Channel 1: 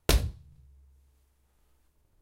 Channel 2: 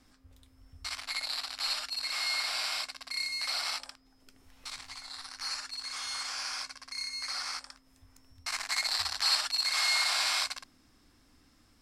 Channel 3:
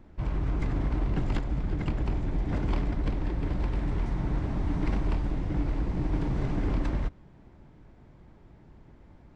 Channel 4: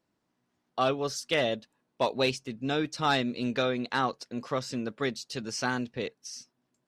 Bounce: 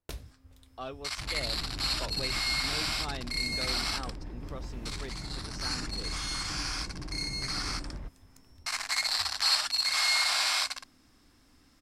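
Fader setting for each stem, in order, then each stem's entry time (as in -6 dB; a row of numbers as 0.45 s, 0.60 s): -17.5 dB, +1.5 dB, -11.5 dB, -13.5 dB; 0.00 s, 0.20 s, 1.00 s, 0.00 s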